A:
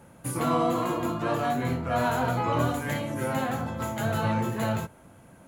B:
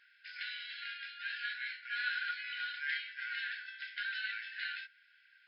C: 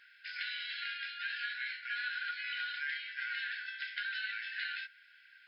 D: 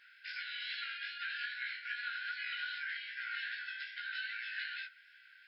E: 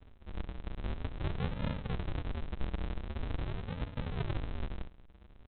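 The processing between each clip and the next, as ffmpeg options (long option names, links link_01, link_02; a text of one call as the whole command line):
ffmpeg -i in.wav -af "afftfilt=real='re*between(b*sr/4096,1400,5300)':imag='im*between(b*sr/4096,1400,5300)':win_size=4096:overlap=0.75" out.wav
ffmpeg -i in.wav -af "acompressor=threshold=-40dB:ratio=6,volume=5dB" out.wav
ffmpeg -i in.wav -af "alimiter=level_in=6dB:limit=-24dB:level=0:latency=1:release=260,volume=-6dB,flanger=delay=16:depth=5.1:speed=2.5,volume=3dB" out.wav
ffmpeg -i in.wav -af "lowpass=frequency=2200:width_type=q:width=2.1,aresample=8000,acrusher=samples=42:mix=1:aa=0.000001:lfo=1:lforange=42:lforate=0.45,aresample=44100,volume=2dB" out.wav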